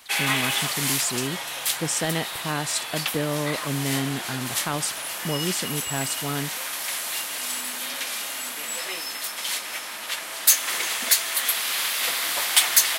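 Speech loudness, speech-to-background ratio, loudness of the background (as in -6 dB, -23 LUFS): -29.0 LUFS, -4.5 dB, -24.5 LUFS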